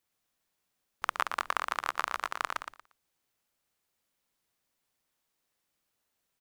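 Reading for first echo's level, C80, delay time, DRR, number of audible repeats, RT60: -6.0 dB, none, 0.117 s, none, 3, none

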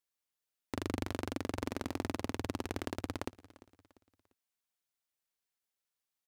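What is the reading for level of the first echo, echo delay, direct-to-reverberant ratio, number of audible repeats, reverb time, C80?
-20.0 dB, 0.346 s, none, 2, none, none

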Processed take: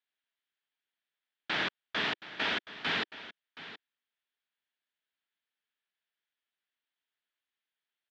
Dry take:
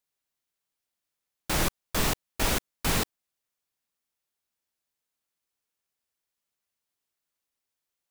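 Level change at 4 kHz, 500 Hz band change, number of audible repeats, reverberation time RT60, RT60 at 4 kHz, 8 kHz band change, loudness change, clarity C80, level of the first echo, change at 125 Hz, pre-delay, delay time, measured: -1.0 dB, -7.5 dB, 1, none, none, -25.0 dB, -4.0 dB, none, -15.0 dB, -17.0 dB, none, 0.723 s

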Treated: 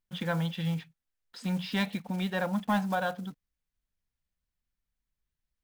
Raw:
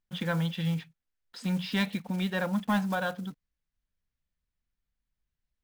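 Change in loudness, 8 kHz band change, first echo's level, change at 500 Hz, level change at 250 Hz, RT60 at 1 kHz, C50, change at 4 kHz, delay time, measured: -1.0 dB, -1.5 dB, none, +0.5 dB, -1.5 dB, none, none, -1.5 dB, none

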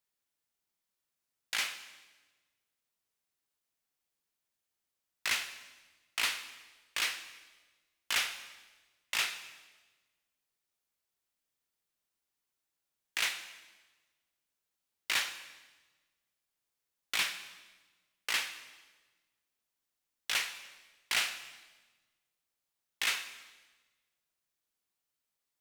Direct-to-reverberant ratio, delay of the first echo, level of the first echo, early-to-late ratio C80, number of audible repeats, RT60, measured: 10.0 dB, none, none, 12.5 dB, none, 1.3 s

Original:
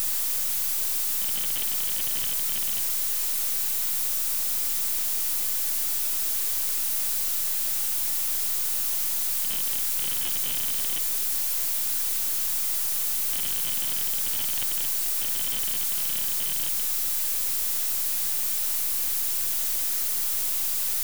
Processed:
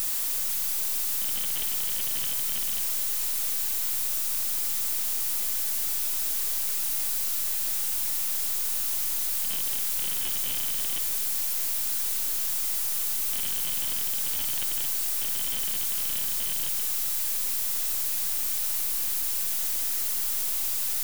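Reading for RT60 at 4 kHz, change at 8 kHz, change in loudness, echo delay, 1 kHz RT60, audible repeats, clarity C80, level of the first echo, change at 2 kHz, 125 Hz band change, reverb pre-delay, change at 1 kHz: 1.4 s, -1.5 dB, -2.0 dB, none, 1.6 s, none, 12.5 dB, none, -1.5 dB, n/a, 6 ms, -1.5 dB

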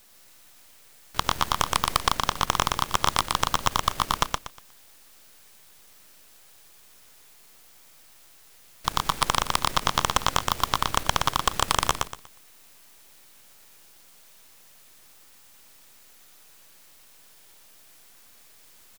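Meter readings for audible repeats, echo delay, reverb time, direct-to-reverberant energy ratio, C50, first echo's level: 3, 0.12 s, none, none, none, -3.0 dB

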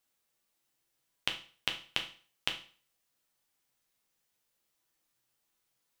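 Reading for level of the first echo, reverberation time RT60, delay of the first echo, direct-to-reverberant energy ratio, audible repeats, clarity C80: none, 0.40 s, none, 3.0 dB, none, 16.0 dB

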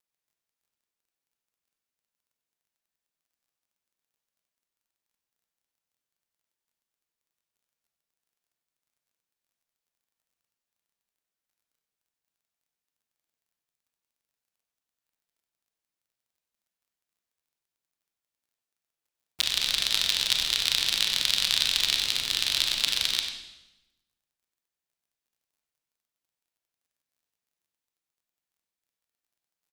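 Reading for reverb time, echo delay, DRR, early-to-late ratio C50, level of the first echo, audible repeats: 1.0 s, 95 ms, 2.0 dB, 4.0 dB, -11.0 dB, 1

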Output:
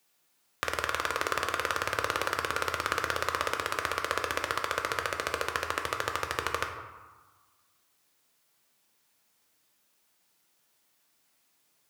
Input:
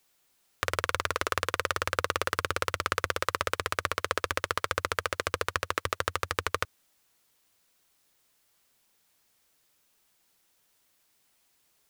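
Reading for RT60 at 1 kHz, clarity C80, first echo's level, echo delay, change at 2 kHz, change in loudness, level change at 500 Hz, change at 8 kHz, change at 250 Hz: 1.5 s, 8.0 dB, none, none, 0.0 dB, -0.5 dB, -1.0 dB, -1.0 dB, 0.0 dB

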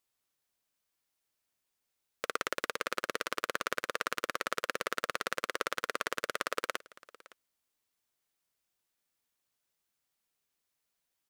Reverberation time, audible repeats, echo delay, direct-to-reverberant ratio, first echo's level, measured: none, 1, 0.563 s, none, -21.5 dB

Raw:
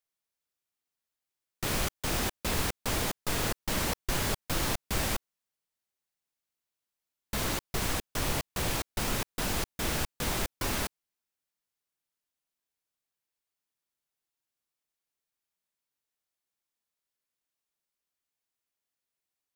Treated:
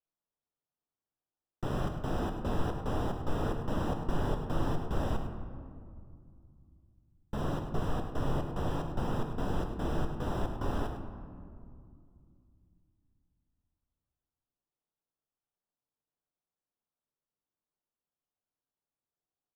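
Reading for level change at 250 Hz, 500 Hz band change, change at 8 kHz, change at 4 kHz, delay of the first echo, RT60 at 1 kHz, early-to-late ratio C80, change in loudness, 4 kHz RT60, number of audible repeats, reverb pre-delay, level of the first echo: +2.0 dB, +0.5 dB, -22.5 dB, -15.0 dB, 0.102 s, 2.1 s, 6.5 dB, -4.0 dB, 1.1 s, 1, 7 ms, -10.0 dB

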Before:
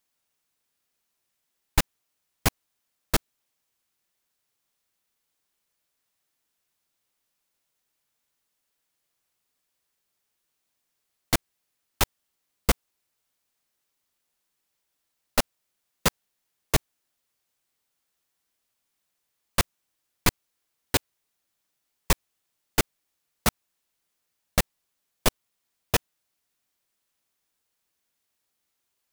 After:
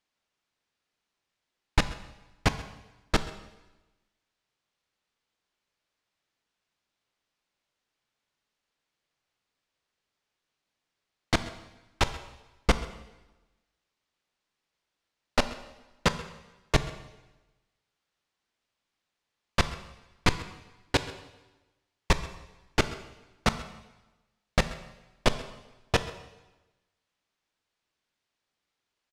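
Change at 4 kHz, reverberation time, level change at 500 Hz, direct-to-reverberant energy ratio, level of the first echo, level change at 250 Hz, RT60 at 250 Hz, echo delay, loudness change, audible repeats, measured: -1.5 dB, 1.1 s, +0.5 dB, 10.5 dB, -19.0 dB, +0.5 dB, 1.1 s, 0.132 s, -2.5 dB, 1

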